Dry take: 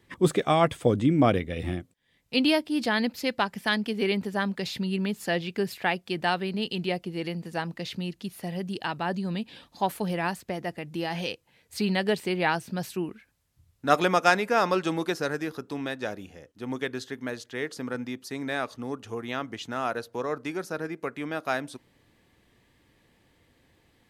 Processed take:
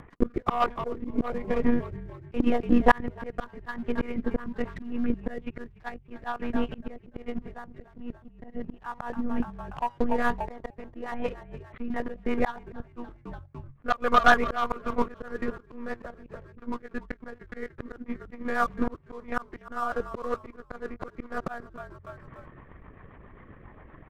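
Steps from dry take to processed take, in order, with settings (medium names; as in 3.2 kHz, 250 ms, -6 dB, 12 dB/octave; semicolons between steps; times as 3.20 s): low-pass 1.9 kHz 24 dB/octave; peaking EQ 1.1 kHz +10.5 dB 0.4 oct; de-hum 162.8 Hz, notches 6; monotone LPC vocoder at 8 kHz 240 Hz; in parallel at -2 dB: level held to a coarse grid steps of 11 dB; on the sum: waveshaping leveller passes 2; upward compressor, threshold -33 dBFS; transient shaper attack +10 dB, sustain -8 dB; rotary cabinet horn 1.2 Hz, later 7.5 Hz, at 10.42 s; on a send: frequency-shifting echo 291 ms, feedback 47%, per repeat -46 Hz, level -21 dB; on the sum: slow attack 590 ms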